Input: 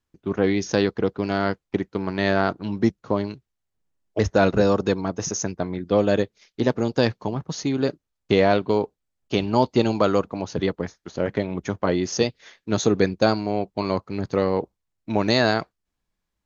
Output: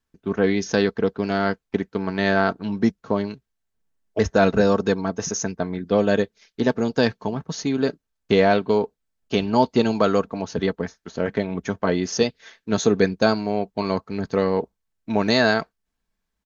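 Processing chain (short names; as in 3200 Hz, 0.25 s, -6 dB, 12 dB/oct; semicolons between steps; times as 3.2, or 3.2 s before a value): bell 1600 Hz +4.5 dB 0.21 oct; comb 4.5 ms, depth 36%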